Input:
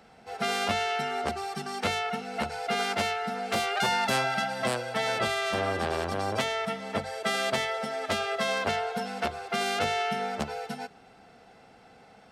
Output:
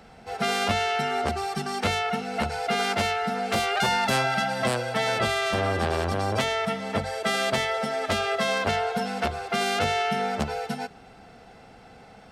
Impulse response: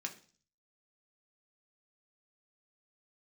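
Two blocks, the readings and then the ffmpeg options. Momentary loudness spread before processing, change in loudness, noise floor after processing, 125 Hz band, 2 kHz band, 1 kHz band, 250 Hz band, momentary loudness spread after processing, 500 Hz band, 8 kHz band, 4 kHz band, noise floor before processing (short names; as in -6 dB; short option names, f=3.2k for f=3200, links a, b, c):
7 LU, +3.5 dB, -50 dBFS, +7.5 dB, +3.0 dB, +3.5 dB, +5.0 dB, 6 LU, +3.5 dB, +3.0 dB, +3.0 dB, -55 dBFS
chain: -filter_complex "[0:a]lowshelf=f=100:g=10.5,asplit=2[a][b];[b]alimiter=limit=-23dB:level=0:latency=1,volume=-1dB[c];[a][c]amix=inputs=2:normalize=0,volume=-1dB"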